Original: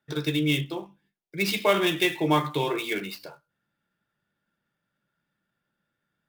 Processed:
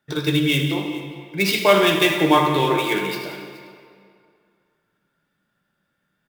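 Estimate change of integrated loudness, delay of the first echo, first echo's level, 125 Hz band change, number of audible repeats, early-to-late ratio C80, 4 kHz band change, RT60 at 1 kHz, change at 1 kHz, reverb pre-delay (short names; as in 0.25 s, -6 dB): +6.5 dB, 78 ms, -13.5 dB, +6.0 dB, 3, 5.5 dB, +7.0 dB, 2.3 s, +8.5 dB, 3 ms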